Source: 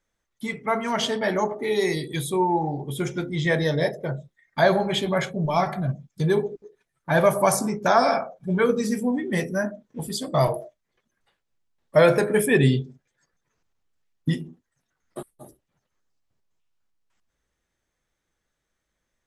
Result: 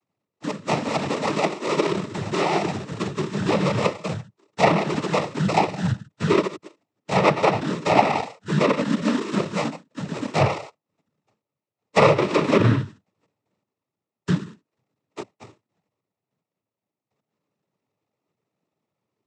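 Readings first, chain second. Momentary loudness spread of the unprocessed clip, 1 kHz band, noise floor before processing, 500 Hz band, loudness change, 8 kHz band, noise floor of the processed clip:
15 LU, +2.5 dB, -80 dBFS, -0.5 dB, +0.5 dB, -4.5 dB, under -85 dBFS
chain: sample-and-hold 29×; treble ducked by the level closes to 2900 Hz, closed at -15 dBFS; noise vocoder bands 12; gain +1.5 dB

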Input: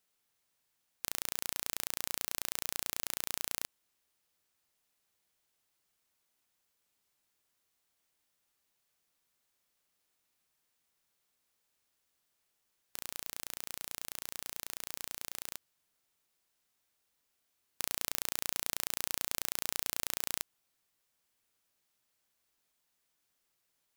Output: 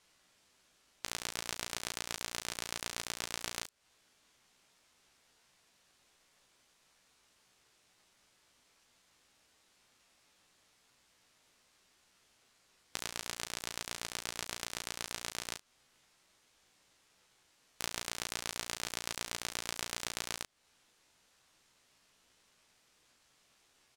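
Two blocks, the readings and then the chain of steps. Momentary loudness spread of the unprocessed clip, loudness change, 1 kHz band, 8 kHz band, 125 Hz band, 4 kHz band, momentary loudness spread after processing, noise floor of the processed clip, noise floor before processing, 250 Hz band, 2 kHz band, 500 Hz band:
7 LU, -3.0 dB, +2.5 dB, -1.5 dB, +3.5 dB, +2.0 dB, 4 LU, -71 dBFS, -80 dBFS, +2.5 dB, +2.5 dB, +3.0 dB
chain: LPF 6900 Hz 12 dB/oct; spectral gate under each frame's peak -30 dB strong; compressor 4:1, threshold -48 dBFS, peak gain reduction 13 dB; ring modulator 1500 Hz; early reflections 16 ms -5.5 dB, 38 ms -8.5 dB; gain +15.5 dB

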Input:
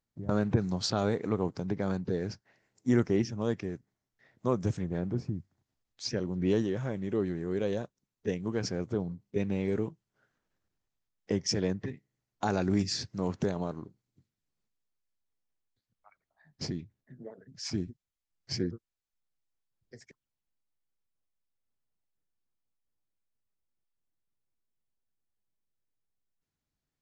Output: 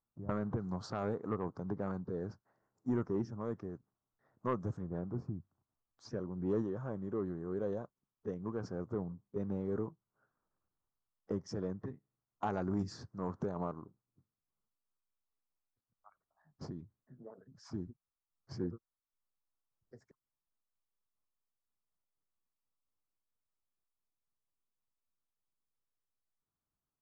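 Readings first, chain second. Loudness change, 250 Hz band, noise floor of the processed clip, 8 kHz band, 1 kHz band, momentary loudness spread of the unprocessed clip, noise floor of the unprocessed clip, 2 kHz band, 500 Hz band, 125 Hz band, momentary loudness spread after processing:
-7.5 dB, -7.5 dB, under -85 dBFS, -19.5 dB, -4.0 dB, 12 LU, under -85 dBFS, -11.0 dB, -7.0 dB, -7.5 dB, 15 LU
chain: resonant high shelf 1700 Hz -12 dB, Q 3; soft clip -18.5 dBFS, distortion -17 dB; noise-modulated level, depth 50%; gain -3.5 dB

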